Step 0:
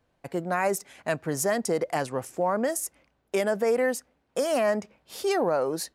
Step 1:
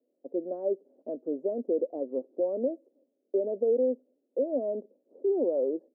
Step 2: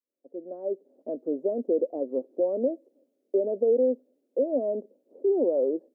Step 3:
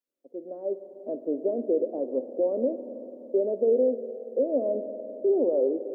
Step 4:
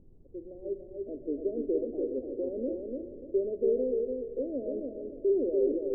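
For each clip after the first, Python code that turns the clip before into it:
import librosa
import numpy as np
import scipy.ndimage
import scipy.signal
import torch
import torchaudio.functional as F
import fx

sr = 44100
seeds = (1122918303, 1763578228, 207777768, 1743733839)

y1 = scipy.signal.sosfilt(scipy.signal.ellip(3, 1.0, 70, [250.0, 570.0], 'bandpass', fs=sr, output='sos'), x)
y2 = fx.fade_in_head(y1, sr, length_s=1.15)
y2 = F.gain(torch.from_numpy(y2), 3.0).numpy()
y3 = fx.rev_spring(y2, sr, rt60_s=3.8, pass_ms=(48, 56), chirp_ms=65, drr_db=9.5)
y4 = fx.dmg_noise_colour(y3, sr, seeds[0], colour='brown', level_db=-47.0)
y4 = fx.ladder_lowpass(y4, sr, hz=490.0, resonance_pct=40)
y4 = fx.echo_feedback(y4, sr, ms=291, feedback_pct=32, wet_db=-4)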